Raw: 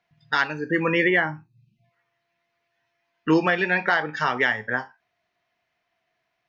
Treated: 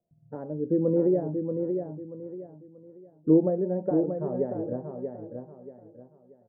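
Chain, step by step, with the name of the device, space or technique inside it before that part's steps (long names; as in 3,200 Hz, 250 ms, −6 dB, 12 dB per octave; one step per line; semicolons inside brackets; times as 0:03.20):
under water (low-pass filter 490 Hz 24 dB per octave; parametric band 580 Hz +10.5 dB 0.28 octaves)
repeating echo 633 ms, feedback 31%, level −6 dB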